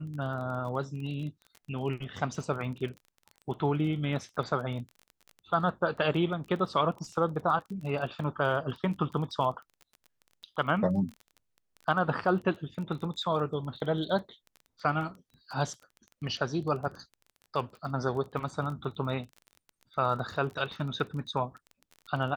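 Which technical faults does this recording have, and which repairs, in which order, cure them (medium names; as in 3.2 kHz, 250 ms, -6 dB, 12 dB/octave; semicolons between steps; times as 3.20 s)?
crackle 21 per s -38 dBFS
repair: de-click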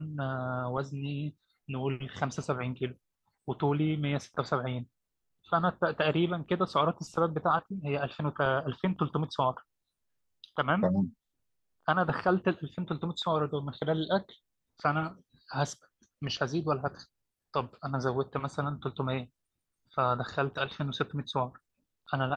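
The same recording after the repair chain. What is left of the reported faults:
nothing left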